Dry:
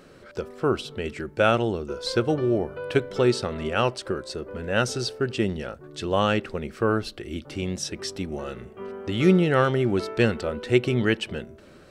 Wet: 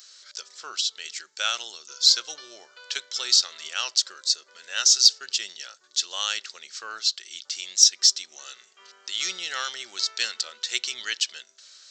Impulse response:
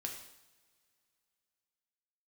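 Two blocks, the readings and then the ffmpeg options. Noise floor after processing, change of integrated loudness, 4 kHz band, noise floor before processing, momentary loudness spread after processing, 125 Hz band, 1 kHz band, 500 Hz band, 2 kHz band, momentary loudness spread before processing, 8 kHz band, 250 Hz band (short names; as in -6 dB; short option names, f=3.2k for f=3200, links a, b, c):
-59 dBFS, +2.5 dB, +12.5 dB, -50 dBFS, 21 LU, under -40 dB, -9.5 dB, -25.0 dB, -3.0 dB, 13 LU, +17.0 dB, under -30 dB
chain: -af "asuperpass=centerf=5000:order=4:qfactor=0.51,aresample=16000,aresample=44100,aexciter=amount=7:drive=6.3:freq=3.7k"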